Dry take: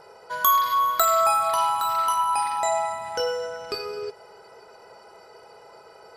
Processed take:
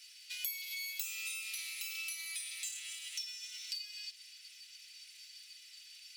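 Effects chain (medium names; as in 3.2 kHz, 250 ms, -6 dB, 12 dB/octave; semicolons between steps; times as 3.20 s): comb filter that takes the minimum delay 5.9 ms; steep high-pass 2.6 kHz 36 dB/octave; compression 4:1, threshold -48 dBFS, peak gain reduction 22.5 dB; trim +6.5 dB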